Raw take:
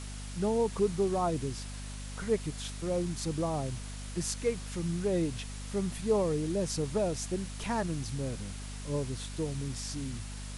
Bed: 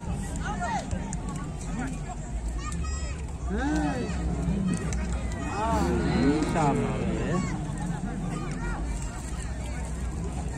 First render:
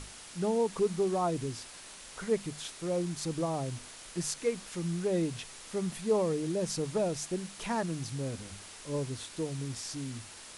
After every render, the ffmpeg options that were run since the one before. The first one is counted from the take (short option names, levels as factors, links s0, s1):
-af "bandreject=f=50:t=h:w=6,bandreject=f=100:t=h:w=6,bandreject=f=150:t=h:w=6,bandreject=f=200:t=h:w=6,bandreject=f=250:t=h:w=6"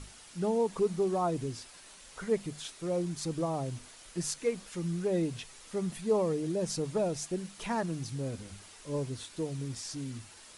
-af "afftdn=nr=6:nf=-49"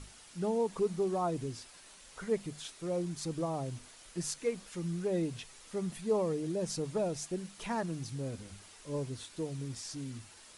-af "volume=0.75"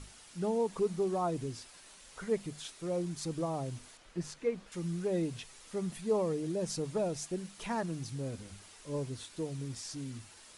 -filter_complex "[0:a]asettb=1/sr,asplit=3[s0][s1][s2];[s0]atrim=end=3.974[s3];[s1]atrim=start=3.97:end=4.72,asetpts=PTS-STARTPTS,afade=t=in:d=0.004:c=qsin,afade=t=out:st=0.746:d=0.004:c=qsin,aemphasis=mode=reproduction:type=75fm[s4];[s2]atrim=start=4.716[s5];[s3][s4]acrossfade=d=0.004:c1=hsin:c2=qsin[s6];[s6][s5]acrossfade=d=0.004:c1=qsin:c2=hsin"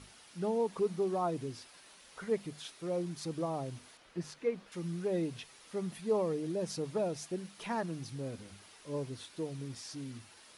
-af "highpass=f=140:p=1,equalizer=f=7600:t=o:w=0.66:g=-7"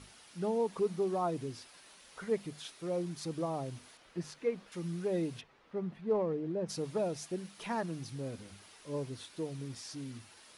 -filter_complex "[0:a]asplit=3[s0][s1][s2];[s0]afade=t=out:st=5.4:d=0.02[s3];[s1]adynamicsmooth=sensitivity=1.5:basefreq=1900,afade=t=in:st=5.4:d=0.02,afade=t=out:st=6.68:d=0.02[s4];[s2]afade=t=in:st=6.68:d=0.02[s5];[s3][s4][s5]amix=inputs=3:normalize=0"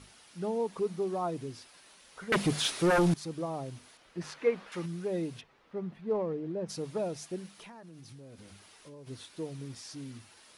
-filter_complex "[0:a]asettb=1/sr,asplit=3[s0][s1][s2];[s0]atrim=end=2.324[s3];[s1]atrim=start=2.32:end=3.14,asetpts=PTS-STARTPTS,afade=t=in:d=0.004:c=qsin,afade=t=out:st=0.816:d=0.004:c=qsin,aeval=exprs='0.0891*sin(PI/2*4.47*val(0)/0.0891)':c=same[s4];[s2]atrim=start=3.136[s5];[s3][s4]acrossfade=d=0.004:c1=hsin:c2=qsin[s6];[s6][s5]acrossfade=d=0.004:c1=qsin:c2=hsin,asettb=1/sr,asplit=3[s7][s8][s9];[s7]atrim=end=4.214[s10];[s8]atrim=start=4.21:end=4.86,asetpts=PTS-STARTPTS,afade=t=in:d=0.004:c=qsin,afade=t=out:st=0.646:d=0.004:c=qsin,equalizer=f=1300:w=0.36:g=10[s11];[s9]atrim=start=4.856[s12];[s10][s11]acrossfade=d=0.004:c1=hsin:c2=qsin[s13];[s13][s12]acrossfade=d=0.004:c1=qsin:c2=hsin,asplit=3[s14][s15][s16];[s14]afade=t=out:st=7.52:d=0.02[s17];[s15]acompressor=threshold=0.00501:ratio=10:attack=3.2:release=140:knee=1:detection=peak,afade=t=in:st=7.52:d=0.02,afade=t=out:st=9.06:d=0.02[s18];[s16]afade=t=in:st=9.06:d=0.02[s19];[s17][s18][s19]amix=inputs=3:normalize=0"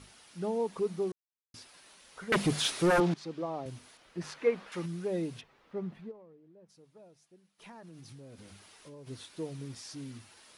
-filter_complex "[0:a]asettb=1/sr,asplit=3[s0][s1][s2];[s0]atrim=end=3.004[s3];[s1]atrim=start=3:end=3.66,asetpts=PTS-STARTPTS,afade=t=in:d=0.004:c=qsin,afade=t=out:st=0.656:d=0.004:c=qsin,highpass=200,lowpass=4400[s4];[s2]atrim=start=3.656[s5];[s3][s4]acrossfade=d=0.004:c1=hsin:c2=qsin[s6];[s6][s5]acrossfade=d=0.004:c1=qsin:c2=hsin,asplit=5[s7][s8][s9][s10][s11];[s7]atrim=end=1.12,asetpts=PTS-STARTPTS,afade=t=out:st=1.116:d=0.004:c=hsin[s12];[s8]atrim=start=1.12:end=1.54,asetpts=PTS-STARTPTS,volume=0[s13];[s9]atrim=start=1.54:end=6.12,asetpts=PTS-STARTPTS,afade=t=in:d=0.004:c=hsin,afade=t=out:st=4.45:d=0.13:c=qsin:silence=0.0749894[s14];[s10]atrim=start=6.12:end=7.58,asetpts=PTS-STARTPTS,volume=0.075[s15];[s11]atrim=start=7.58,asetpts=PTS-STARTPTS,afade=t=in:d=0.13:c=qsin:silence=0.0749894[s16];[s12][s13][s14][s15][s16]concat=n=5:v=0:a=1"